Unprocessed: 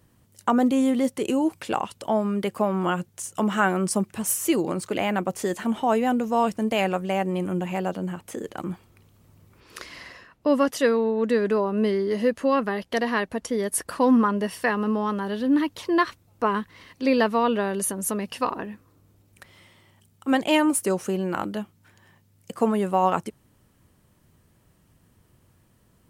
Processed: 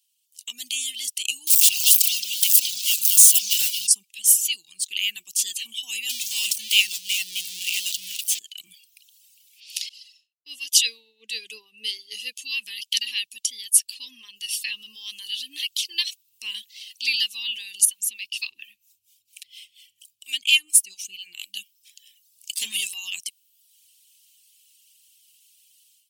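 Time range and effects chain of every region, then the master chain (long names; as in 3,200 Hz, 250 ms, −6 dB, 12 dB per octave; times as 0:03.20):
0:01.47–0:03.87: spike at every zero crossing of −18.5 dBFS + echo through a band-pass that steps 219 ms, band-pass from 4,000 Hz, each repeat −0.7 octaves, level −3 dB
0:06.09–0:08.39: converter with a step at zero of −25.5 dBFS + downward expander −26 dBFS
0:09.89–0:12.42: downward expander −48 dBFS + parametric band 450 Hz +13.5 dB 0.62 octaves + multiband upward and downward expander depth 100%
0:17.85–0:21.55: parametric band 2,400 Hz +5.5 dB 0.51 octaves + two-band tremolo in antiphase 4.3 Hz, crossover 570 Hz
0:22.54–0:22.94: mains-hum notches 60/120/180/240/300/360/420 Hz + leveller curve on the samples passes 2
whole clip: reverb reduction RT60 0.86 s; elliptic high-pass filter 2,800 Hz, stop band 50 dB; automatic gain control gain up to 16 dB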